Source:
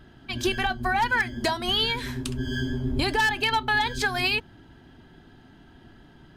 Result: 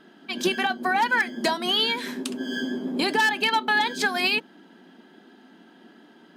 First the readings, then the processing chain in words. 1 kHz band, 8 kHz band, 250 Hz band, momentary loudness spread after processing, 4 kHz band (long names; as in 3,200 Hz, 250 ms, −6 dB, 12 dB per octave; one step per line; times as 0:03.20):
+1.5 dB, +1.5 dB, +2.0 dB, 8 LU, +1.5 dB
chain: sub-octave generator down 1 octave, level +1 dB
linear-phase brick-wall high-pass 180 Hz
level +1.5 dB